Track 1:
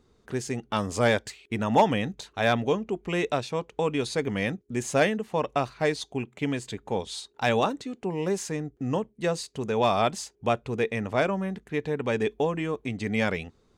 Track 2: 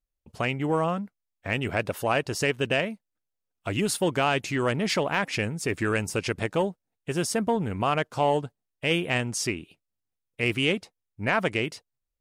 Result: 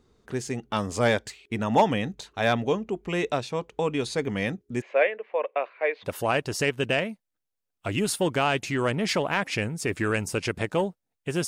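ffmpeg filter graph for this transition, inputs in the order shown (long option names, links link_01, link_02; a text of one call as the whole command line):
ffmpeg -i cue0.wav -i cue1.wav -filter_complex "[0:a]asplit=3[link_01][link_02][link_03];[link_01]afade=type=out:start_time=4.8:duration=0.02[link_04];[link_02]highpass=frequency=470:width=0.5412,highpass=frequency=470:width=1.3066,equalizer=frequency=530:width_type=q:width=4:gain=6,equalizer=frequency=830:width_type=q:width=4:gain=-6,equalizer=frequency=1300:width_type=q:width=4:gain=-5,equalizer=frequency=2300:width_type=q:width=4:gain=7,lowpass=frequency=2500:width=0.5412,lowpass=frequency=2500:width=1.3066,afade=type=in:start_time=4.8:duration=0.02,afade=type=out:start_time=6.1:duration=0.02[link_05];[link_03]afade=type=in:start_time=6.1:duration=0.02[link_06];[link_04][link_05][link_06]amix=inputs=3:normalize=0,apad=whole_dur=11.47,atrim=end=11.47,atrim=end=6.1,asetpts=PTS-STARTPTS[link_07];[1:a]atrim=start=1.83:end=7.28,asetpts=PTS-STARTPTS[link_08];[link_07][link_08]acrossfade=duration=0.08:curve1=tri:curve2=tri" out.wav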